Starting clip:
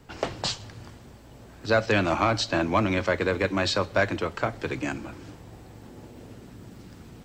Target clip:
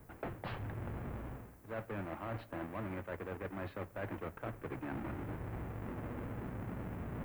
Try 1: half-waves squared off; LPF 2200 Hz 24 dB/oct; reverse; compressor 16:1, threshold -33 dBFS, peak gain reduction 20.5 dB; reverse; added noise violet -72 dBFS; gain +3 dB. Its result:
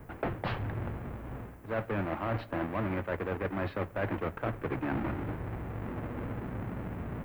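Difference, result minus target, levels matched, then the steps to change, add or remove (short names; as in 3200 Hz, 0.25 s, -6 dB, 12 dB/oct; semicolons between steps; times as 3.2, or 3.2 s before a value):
compressor: peak gain reduction -9 dB
change: compressor 16:1, threshold -42.5 dBFS, peak gain reduction 29 dB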